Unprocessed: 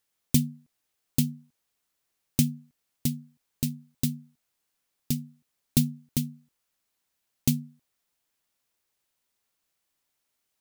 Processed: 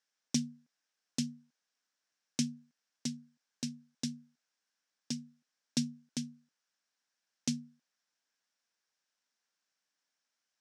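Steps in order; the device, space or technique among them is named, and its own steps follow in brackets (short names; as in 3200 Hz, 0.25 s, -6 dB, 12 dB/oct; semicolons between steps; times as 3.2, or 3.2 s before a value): television speaker (speaker cabinet 190–7700 Hz, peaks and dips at 370 Hz -7 dB, 1600 Hz +8 dB, 5500 Hz +8 dB); gain -6 dB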